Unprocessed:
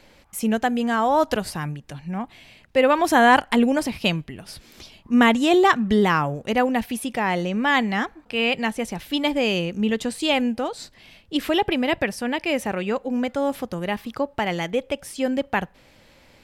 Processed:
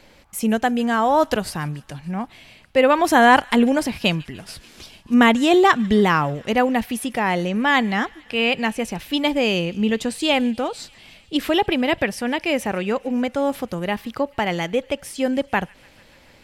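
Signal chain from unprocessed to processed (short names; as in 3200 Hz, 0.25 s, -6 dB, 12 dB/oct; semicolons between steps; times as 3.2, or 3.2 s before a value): 4.36–5.14 CVSD 64 kbps; thin delay 0.146 s, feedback 77%, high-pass 2000 Hz, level -23 dB; gain +2 dB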